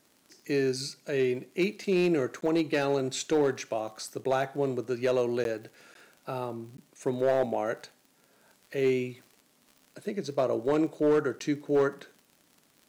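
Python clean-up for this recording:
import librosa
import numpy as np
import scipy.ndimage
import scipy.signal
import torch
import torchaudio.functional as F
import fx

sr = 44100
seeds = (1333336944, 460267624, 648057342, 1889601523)

y = fx.fix_declip(x, sr, threshold_db=-18.5)
y = fx.fix_declick_ar(y, sr, threshold=6.5)
y = fx.fix_interpolate(y, sr, at_s=(2.41, 4.24, 5.44, 5.94, 6.77, 11.39), length_ms=12.0)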